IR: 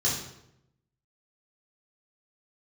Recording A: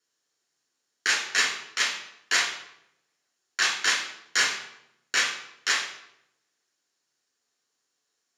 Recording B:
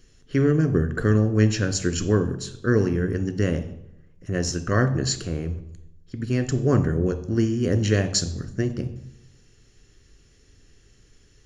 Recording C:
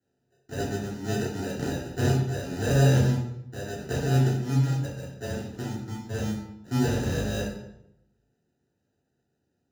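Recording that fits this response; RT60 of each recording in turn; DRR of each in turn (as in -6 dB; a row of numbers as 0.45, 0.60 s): C; 0.80, 0.80, 0.80 s; -1.0, 8.5, -6.5 dB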